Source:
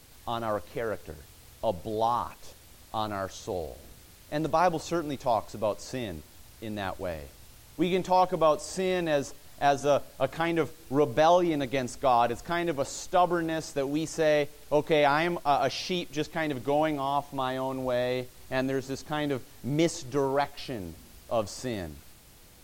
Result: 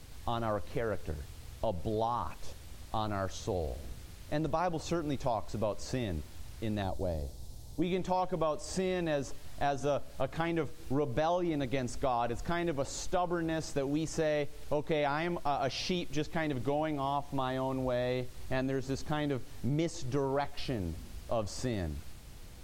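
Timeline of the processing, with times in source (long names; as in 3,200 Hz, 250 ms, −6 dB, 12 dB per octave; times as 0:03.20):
0:06.82–0:07.82: flat-topped bell 1,800 Hz −13.5 dB
whole clip: low-shelf EQ 140 Hz +10 dB; downward compressor 4 to 1, threshold −29 dBFS; high-shelf EQ 12,000 Hz −10 dB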